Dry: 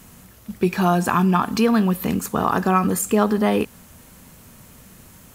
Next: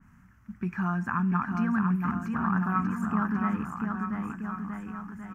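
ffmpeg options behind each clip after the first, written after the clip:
-af "firequalizer=gain_entry='entry(230,0);entry(460,-22);entry(920,-4);entry(1500,4);entry(3800,-26);entry(5800,-14);entry(9200,-24)':delay=0.05:min_phase=1,aecho=1:1:690|1276|1775|2199|2559:0.631|0.398|0.251|0.158|0.1,adynamicequalizer=threshold=0.0178:dfrequency=2100:dqfactor=0.7:tfrequency=2100:tqfactor=0.7:attack=5:release=100:ratio=0.375:range=1.5:mode=cutabove:tftype=highshelf,volume=-8.5dB"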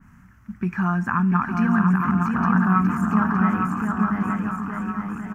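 -af "aecho=1:1:861:0.596,volume=6.5dB"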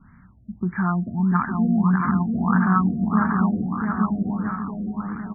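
-af "afftfilt=real='re*lt(b*sr/1024,700*pow(2400/700,0.5+0.5*sin(2*PI*1.6*pts/sr)))':imag='im*lt(b*sr/1024,700*pow(2400/700,0.5+0.5*sin(2*PI*1.6*pts/sr)))':win_size=1024:overlap=0.75"

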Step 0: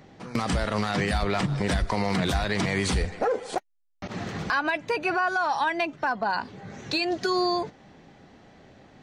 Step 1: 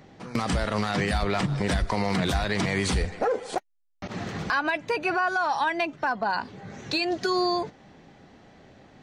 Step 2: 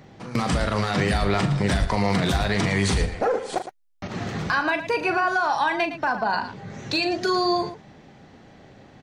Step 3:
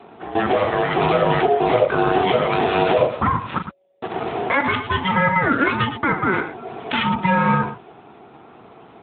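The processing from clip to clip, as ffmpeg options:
-af anull
-af "equalizer=f=120:t=o:w=0.64:g=4,aecho=1:1:40|112:0.355|0.266,volume=2dB"
-af "aeval=exprs='val(0)*sin(2*PI*560*n/s)':c=same,acrusher=samples=7:mix=1:aa=0.000001,volume=8.5dB" -ar 8000 -c:a libopencore_amrnb -b:a 10200

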